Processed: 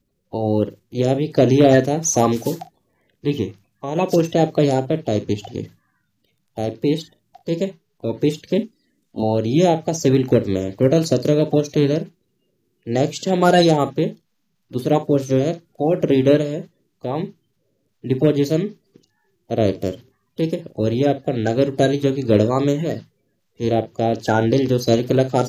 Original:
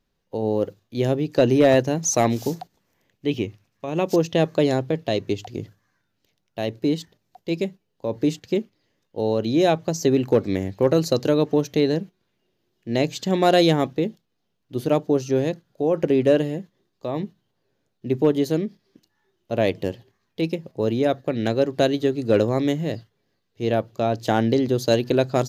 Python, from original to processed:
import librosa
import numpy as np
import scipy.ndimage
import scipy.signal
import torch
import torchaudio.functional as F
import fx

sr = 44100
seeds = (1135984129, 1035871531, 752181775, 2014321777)

y = fx.spec_quant(x, sr, step_db=30)
y = fx.graphic_eq_10(y, sr, hz=(125, 250, 500, 8000), db=(-10, 12, -12, 6), at=(8.58, 9.23))
y = fx.room_early_taps(y, sr, ms=(38, 56), db=(-16.5, -16.0))
y = y * librosa.db_to_amplitude(3.5)